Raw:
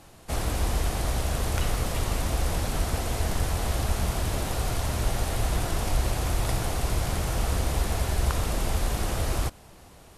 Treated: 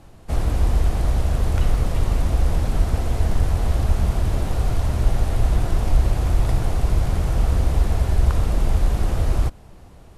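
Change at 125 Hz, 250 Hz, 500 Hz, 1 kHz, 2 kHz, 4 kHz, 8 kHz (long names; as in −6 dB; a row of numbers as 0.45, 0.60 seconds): +7.5, +4.0, +2.0, +0.5, −2.0, −4.0, −6.0 decibels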